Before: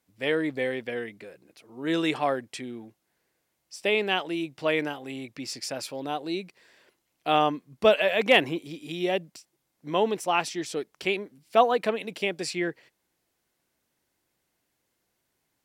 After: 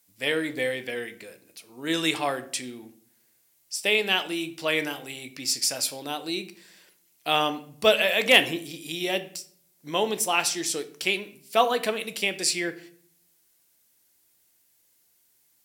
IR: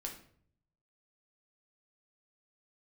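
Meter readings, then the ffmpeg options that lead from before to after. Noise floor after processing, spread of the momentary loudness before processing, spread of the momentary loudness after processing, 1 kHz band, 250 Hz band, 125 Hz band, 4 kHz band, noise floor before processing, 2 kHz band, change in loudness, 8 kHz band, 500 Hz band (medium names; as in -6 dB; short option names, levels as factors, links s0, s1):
-66 dBFS, 15 LU, 14 LU, -1.5 dB, -1.5 dB, -2.0 dB, +6.5 dB, -78 dBFS, +3.5 dB, +1.5 dB, +12.0 dB, -1.5 dB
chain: -filter_complex "[0:a]crystalizer=i=5:c=0,asplit=2[s0][s1];[1:a]atrim=start_sample=2205[s2];[s1][s2]afir=irnorm=-1:irlink=0,volume=0.944[s3];[s0][s3]amix=inputs=2:normalize=0,volume=0.447"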